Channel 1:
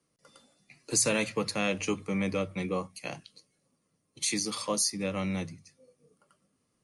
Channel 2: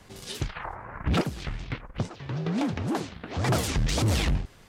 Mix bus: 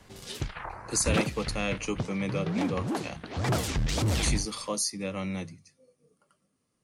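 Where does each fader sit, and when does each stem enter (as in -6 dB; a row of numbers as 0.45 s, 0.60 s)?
-1.5 dB, -2.5 dB; 0.00 s, 0.00 s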